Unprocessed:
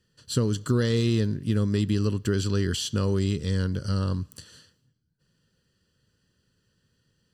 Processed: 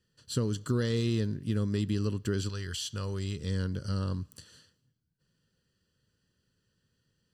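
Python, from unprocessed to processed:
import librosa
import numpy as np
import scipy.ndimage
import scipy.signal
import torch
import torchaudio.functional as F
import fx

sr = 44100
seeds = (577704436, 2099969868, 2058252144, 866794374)

y = fx.peak_eq(x, sr, hz=260.0, db=fx.line((2.48, -15.0), (3.39, -5.5)), octaves=2.1, at=(2.48, 3.39), fade=0.02)
y = y * librosa.db_to_amplitude(-5.5)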